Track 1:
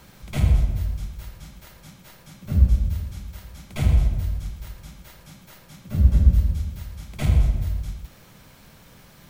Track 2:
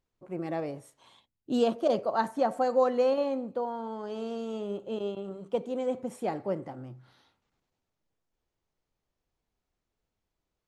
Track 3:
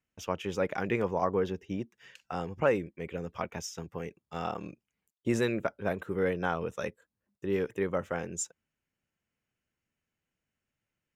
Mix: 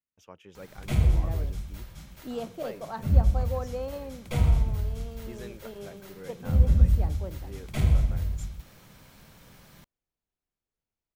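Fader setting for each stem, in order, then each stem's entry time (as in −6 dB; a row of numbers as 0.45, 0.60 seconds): −3.5, −9.5, −16.0 decibels; 0.55, 0.75, 0.00 seconds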